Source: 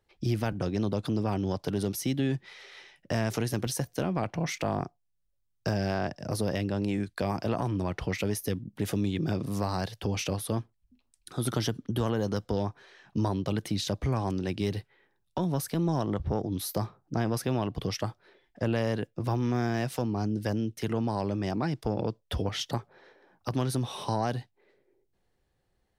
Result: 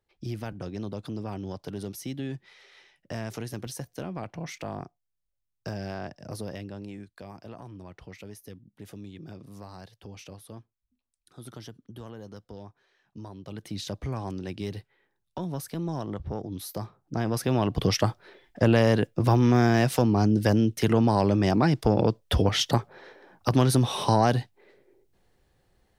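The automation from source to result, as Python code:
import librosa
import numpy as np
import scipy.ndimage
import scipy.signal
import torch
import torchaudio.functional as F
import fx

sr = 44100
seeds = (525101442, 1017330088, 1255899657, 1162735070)

y = fx.gain(x, sr, db=fx.line((6.35, -6.0), (7.24, -14.0), (13.34, -14.0), (13.79, -4.0), (16.84, -4.0), (17.87, 8.0)))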